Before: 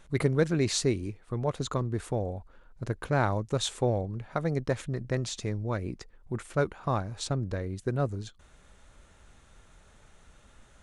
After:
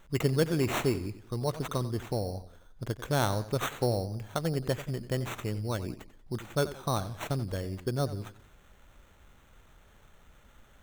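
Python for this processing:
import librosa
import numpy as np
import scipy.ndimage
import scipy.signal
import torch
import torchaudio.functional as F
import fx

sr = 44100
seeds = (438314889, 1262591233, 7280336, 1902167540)

y = fx.sample_hold(x, sr, seeds[0], rate_hz=4900.0, jitter_pct=0)
y = fx.echo_warbled(y, sr, ms=90, feedback_pct=39, rate_hz=2.8, cents=120, wet_db=-14.5)
y = y * librosa.db_to_amplitude(-1.5)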